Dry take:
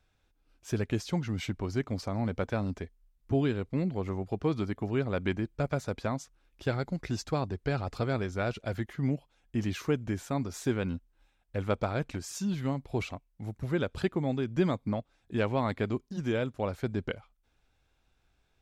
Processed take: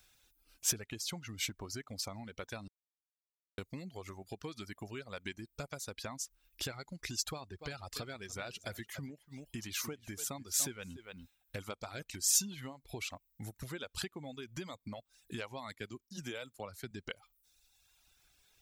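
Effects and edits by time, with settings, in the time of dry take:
2.68–3.58 s: mute
7.30–12.10 s: delay 289 ms -13.5 dB
15.75–16.91 s: three bands expanded up and down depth 70%
whole clip: compression 8:1, threshold -39 dBFS; pre-emphasis filter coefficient 0.9; reverb removal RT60 1.4 s; trim +18 dB

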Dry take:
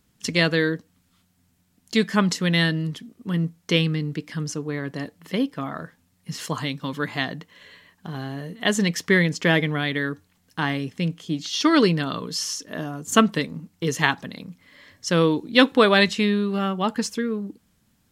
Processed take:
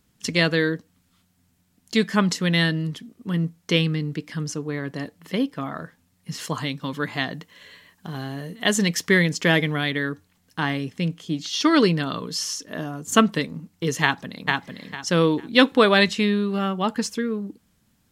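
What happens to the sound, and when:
7.33–9.91 s: treble shelf 4.7 kHz +5.5 dB
14.02–14.49 s: echo throw 450 ms, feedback 25%, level -2.5 dB

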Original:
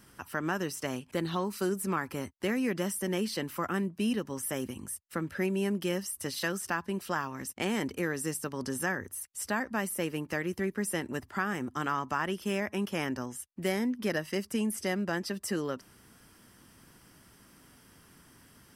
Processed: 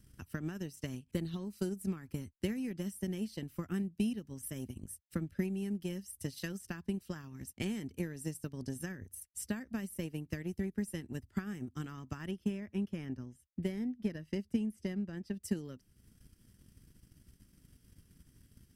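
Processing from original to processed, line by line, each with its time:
12.31–15.43 s: treble shelf 4.5 kHz -12 dB
whole clip: amplifier tone stack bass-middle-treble 10-0-1; transient shaper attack +9 dB, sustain -6 dB; trim +10.5 dB

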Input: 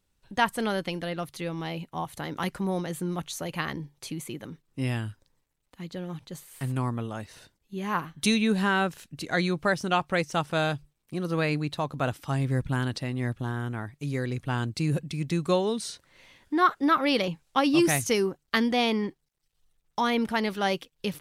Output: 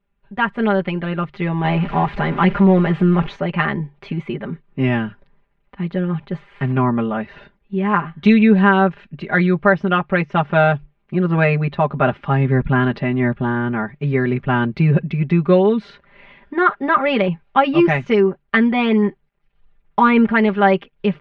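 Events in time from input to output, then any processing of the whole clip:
1.64–3.36 s: jump at every zero crossing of -34.5 dBFS
whole clip: low-pass 2.5 kHz 24 dB/octave; comb 5 ms, depth 95%; level rider gain up to 11 dB

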